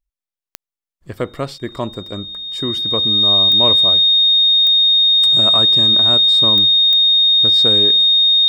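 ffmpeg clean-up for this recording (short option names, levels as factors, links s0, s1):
-af "adeclick=t=4,bandreject=f=3700:w=30"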